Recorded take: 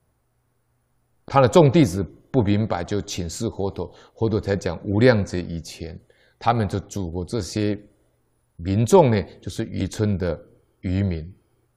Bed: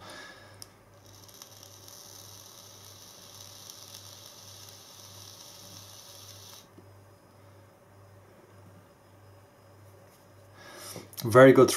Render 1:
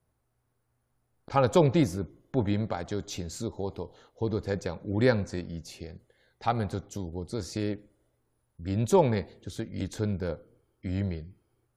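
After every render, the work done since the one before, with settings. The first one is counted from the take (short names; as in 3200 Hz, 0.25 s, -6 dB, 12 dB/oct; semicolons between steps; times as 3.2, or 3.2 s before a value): gain -8 dB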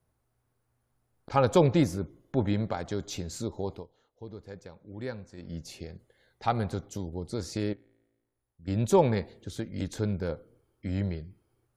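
3.71–5.53 dip -13.5 dB, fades 0.16 s; 7.73–8.68 resonator 56 Hz, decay 1.2 s, mix 80%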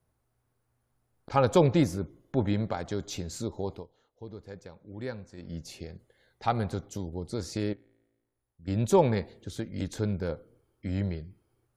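nothing audible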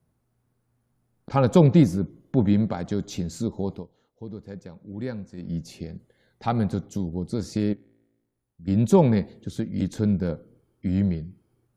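bell 190 Hz +11 dB 1.4 oct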